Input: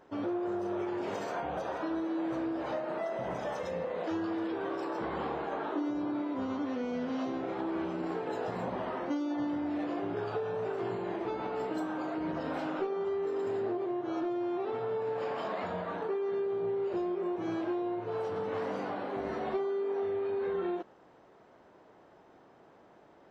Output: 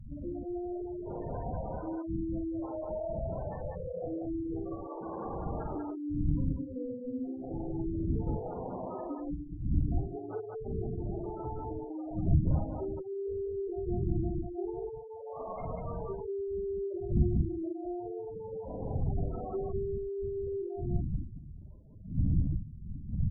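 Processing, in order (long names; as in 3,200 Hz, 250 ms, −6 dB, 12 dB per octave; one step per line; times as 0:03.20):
wind on the microphone 150 Hz −33 dBFS
gate on every frequency bin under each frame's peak −10 dB strong
on a send: loudspeakers that aren't time-aligned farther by 16 metres −6 dB, 66 metres −2 dB
on the sum: level −4.5 dB
AAC 64 kbit/s 44,100 Hz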